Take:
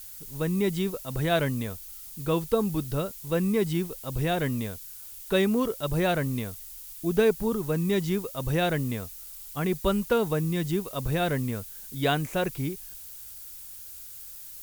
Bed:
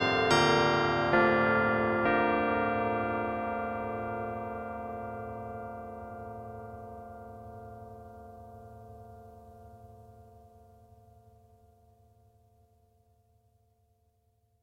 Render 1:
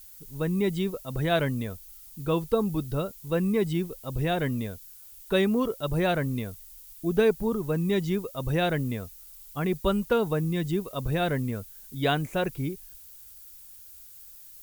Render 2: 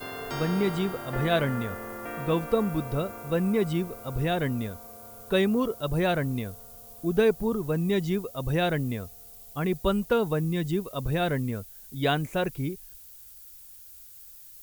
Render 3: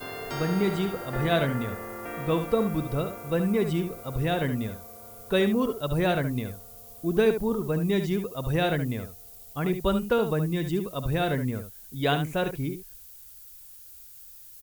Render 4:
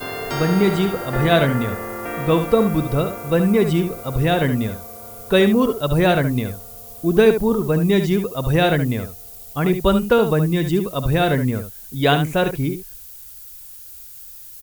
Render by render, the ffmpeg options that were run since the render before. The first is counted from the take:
-af "afftdn=nr=7:nf=-43"
-filter_complex "[1:a]volume=-10.5dB[a];[0:a][a]amix=inputs=2:normalize=0"
-af "aecho=1:1:71:0.355"
-af "volume=8.5dB"

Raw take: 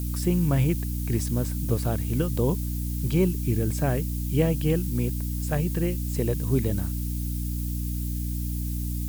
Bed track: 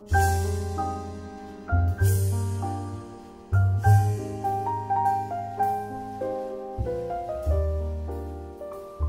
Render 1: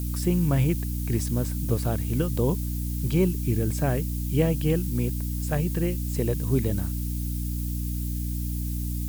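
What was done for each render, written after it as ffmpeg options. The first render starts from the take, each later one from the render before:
-af anull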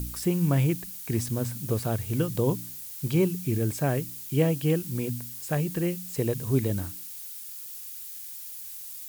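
-af "bandreject=f=60:t=h:w=4,bandreject=f=120:t=h:w=4,bandreject=f=180:t=h:w=4,bandreject=f=240:t=h:w=4,bandreject=f=300:t=h:w=4"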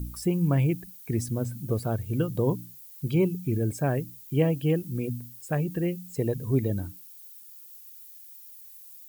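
-af "afftdn=nr=13:nf=-40"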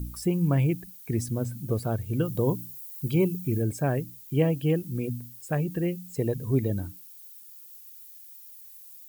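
-filter_complex "[0:a]asettb=1/sr,asplit=3[a][b][c];[a]atrim=end=2.254[d];[b]atrim=start=2.25:end=3.62,asetpts=PTS-STARTPTS,afade=t=in:d=0.004:c=qsin,afade=t=out:st=1.366:d=0.004:c=qsin,highshelf=f=7.7k:g=6[e];[c]atrim=start=3.616[f];[d][e]acrossfade=d=0.004:c1=hsin:c2=qsin[g];[g][f]acrossfade=d=0.004:c1=qsin:c2=hsin"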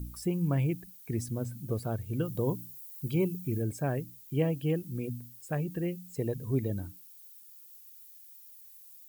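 -af "volume=-5dB"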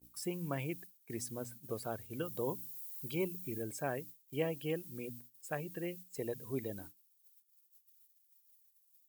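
-af "highpass=f=660:p=1,agate=range=-28dB:threshold=-49dB:ratio=16:detection=peak"

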